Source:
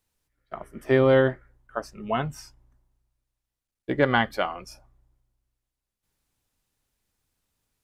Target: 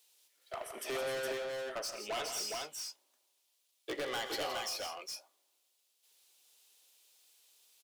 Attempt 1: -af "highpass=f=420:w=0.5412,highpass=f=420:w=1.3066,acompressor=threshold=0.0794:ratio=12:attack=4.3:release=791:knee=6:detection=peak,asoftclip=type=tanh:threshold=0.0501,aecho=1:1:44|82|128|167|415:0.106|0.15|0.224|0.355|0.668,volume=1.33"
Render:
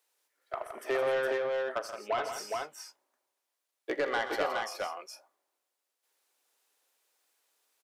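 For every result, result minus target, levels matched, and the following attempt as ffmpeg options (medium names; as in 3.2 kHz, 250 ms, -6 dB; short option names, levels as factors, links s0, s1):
4 kHz band -9.0 dB; saturation: distortion -8 dB
-af "highpass=f=420:w=0.5412,highpass=f=420:w=1.3066,highshelf=f=2300:t=q:w=1.5:g=9,acompressor=threshold=0.0794:ratio=12:attack=4.3:release=791:knee=6:detection=peak,asoftclip=type=tanh:threshold=0.0501,aecho=1:1:44|82|128|167|415:0.106|0.15|0.224|0.355|0.668,volume=1.33"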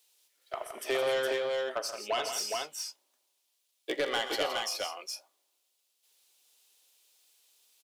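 saturation: distortion -8 dB
-af "highpass=f=420:w=0.5412,highpass=f=420:w=1.3066,highshelf=f=2300:t=q:w=1.5:g=9,acompressor=threshold=0.0794:ratio=12:attack=4.3:release=791:knee=6:detection=peak,asoftclip=type=tanh:threshold=0.0141,aecho=1:1:44|82|128|167|415:0.106|0.15|0.224|0.355|0.668,volume=1.33"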